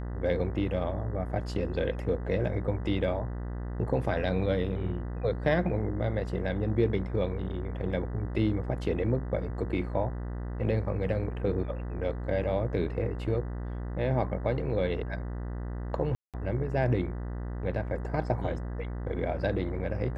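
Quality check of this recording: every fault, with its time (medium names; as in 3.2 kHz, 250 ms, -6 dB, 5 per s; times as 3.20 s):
buzz 60 Hz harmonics 33 -35 dBFS
16.15–16.34 s: dropout 187 ms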